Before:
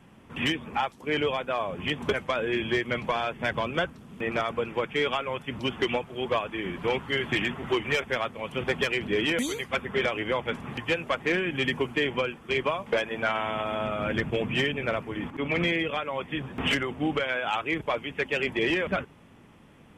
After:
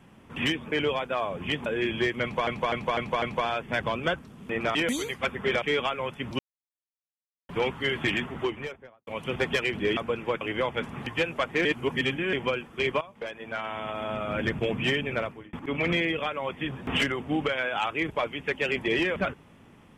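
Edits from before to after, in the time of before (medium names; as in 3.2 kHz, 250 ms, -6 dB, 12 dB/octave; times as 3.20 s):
0.72–1.10 s: delete
2.04–2.37 s: delete
2.93–3.18 s: loop, 5 plays
4.46–4.90 s: swap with 9.25–10.12 s
5.67–6.77 s: mute
7.45–8.35 s: studio fade out
11.36–12.04 s: reverse
12.72–14.23 s: fade in, from -15 dB
14.86–15.24 s: fade out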